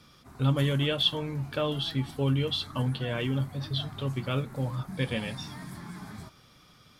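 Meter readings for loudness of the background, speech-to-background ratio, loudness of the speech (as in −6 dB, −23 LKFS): −44.0 LKFS, 14.5 dB, −29.5 LKFS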